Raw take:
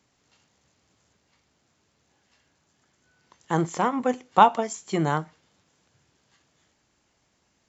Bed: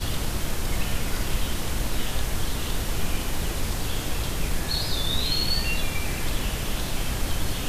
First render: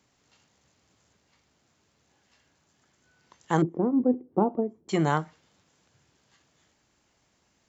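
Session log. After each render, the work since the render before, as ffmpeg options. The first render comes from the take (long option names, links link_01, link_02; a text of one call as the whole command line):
ffmpeg -i in.wav -filter_complex "[0:a]asettb=1/sr,asplit=3[link_01][link_02][link_03];[link_01]atrim=end=3.624[link_04];[link_02]atrim=start=3.62:end=4.89,asetpts=PTS-STARTPTS,afade=type=in:duration=0.004:curve=qsin,afade=type=out:start_time=1.266:duration=0.004:curve=qsin,lowpass=frequency=350:width_type=q:width=2.5[link_05];[link_03]atrim=start=4.886[link_06];[link_04][link_05]acrossfade=duration=0.004:curve1=hsin:curve2=qsin[link_07];[link_07][link_06]acrossfade=duration=0.004:curve1=qsin:curve2=hsin" out.wav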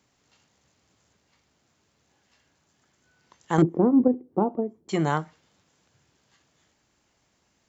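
ffmpeg -i in.wav -filter_complex "[0:a]asettb=1/sr,asplit=3[link_01][link_02][link_03];[link_01]atrim=end=3.584[link_04];[link_02]atrim=start=3.58:end=4.08,asetpts=PTS-STARTPTS,afade=type=in:duration=0.004:curve=qsin,afade=type=out:start_time=0.496:duration=0.004:curve=qsin,acontrast=37[link_05];[link_03]atrim=start=4.076[link_06];[link_04][link_05]acrossfade=duration=0.004:curve1=hsin:curve2=qsin[link_07];[link_07][link_06]acrossfade=duration=0.004:curve1=qsin:curve2=hsin" out.wav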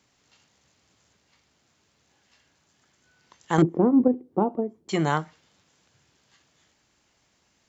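ffmpeg -i in.wav -af "lowpass=frequency=3700:poles=1,highshelf=frequency=2400:gain=9.5" out.wav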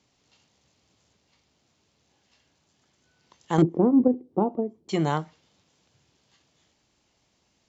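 ffmpeg -i in.wav -af "lowpass=6600,equalizer=frequency=1600:width_type=o:width=1.1:gain=-6.5" out.wav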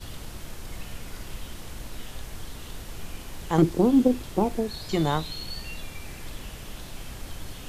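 ffmpeg -i in.wav -i bed.wav -filter_complex "[1:a]volume=-11.5dB[link_01];[0:a][link_01]amix=inputs=2:normalize=0" out.wav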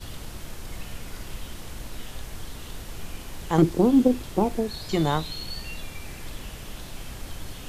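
ffmpeg -i in.wav -af "volume=1dB" out.wav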